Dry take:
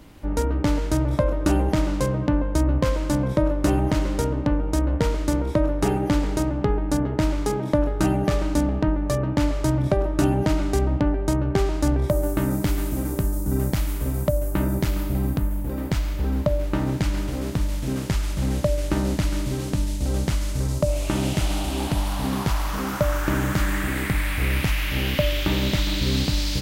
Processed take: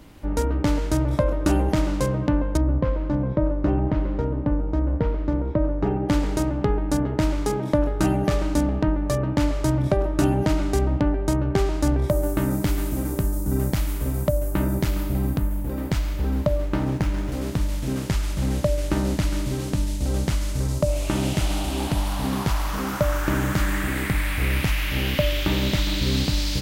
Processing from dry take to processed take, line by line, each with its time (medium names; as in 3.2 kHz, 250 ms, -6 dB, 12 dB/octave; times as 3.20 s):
2.57–6.09 s: tape spacing loss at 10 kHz 42 dB
16.56–17.32 s: sliding maximum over 9 samples